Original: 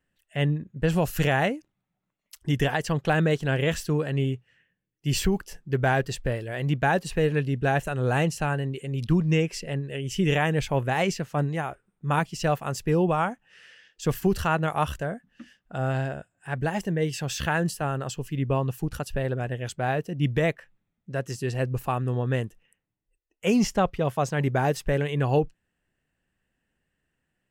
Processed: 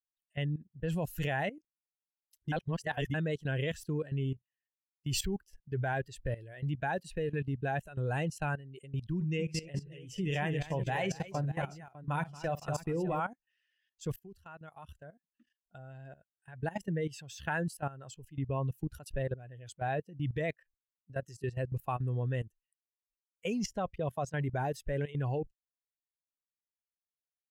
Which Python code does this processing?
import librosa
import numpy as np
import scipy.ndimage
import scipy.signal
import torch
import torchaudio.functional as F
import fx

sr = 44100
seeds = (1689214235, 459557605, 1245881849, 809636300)

y = fx.echo_multitap(x, sr, ms=(48, 228, 600), db=(-12.0, -7.0, -10.5), at=(9.16, 13.2))
y = fx.edit(y, sr, fx.reverse_span(start_s=2.52, length_s=0.62),
    fx.fade_in_from(start_s=14.16, length_s=2.77, floor_db=-16.0), tone=tone)
y = fx.bin_expand(y, sr, power=1.5)
y = fx.notch(y, sr, hz=1200.0, q=10.0)
y = fx.level_steps(y, sr, step_db=16)